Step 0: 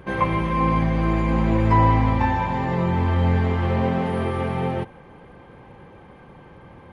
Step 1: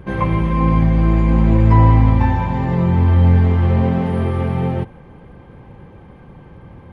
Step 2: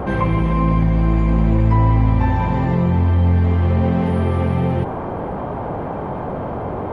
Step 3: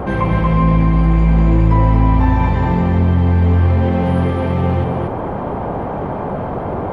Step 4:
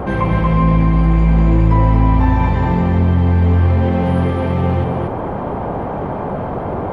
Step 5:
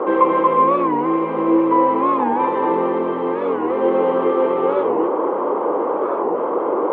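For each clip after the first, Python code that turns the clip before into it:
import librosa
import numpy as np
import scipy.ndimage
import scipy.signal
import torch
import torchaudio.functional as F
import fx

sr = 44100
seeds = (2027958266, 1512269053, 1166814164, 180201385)

y1 = fx.low_shelf(x, sr, hz=260.0, db=11.0)
y1 = y1 * librosa.db_to_amplitude(-1.0)
y2 = fx.dmg_noise_band(y1, sr, seeds[0], low_hz=72.0, high_hz=910.0, level_db=-34.0)
y2 = fx.env_flatten(y2, sr, amount_pct=50)
y2 = y2 * librosa.db_to_amplitude(-4.5)
y3 = y2 + 10.0 ** (-3.5 / 20.0) * np.pad(y2, (int(233 * sr / 1000.0), 0))[:len(y2)]
y3 = y3 * librosa.db_to_amplitude(1.5)
y4 = y3
y5 = fx.cabinet(y4, sr, low_hz=330.0, low_slope=24, high_hz=2700.0, hz=(330.0, 490.0, 700.0, 1100.0, 1700.0, 2400.0), db=(7, 7, -8, 7, -8, -7))
y5 = fx.record_warp(y5, sr, rpm=45.0, depth_cents=160.0)
y5 = y5 * librosa.db_to_amplitude(2.0)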